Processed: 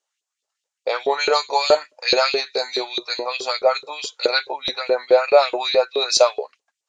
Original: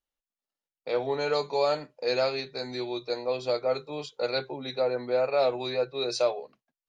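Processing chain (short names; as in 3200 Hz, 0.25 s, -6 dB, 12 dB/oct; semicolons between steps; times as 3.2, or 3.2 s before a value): synth low-pass 7100 Hz, resonance Q 2.9; LFO high-pass saw up 4.7 Hz 390–3600 Hz; gain +8.5 dB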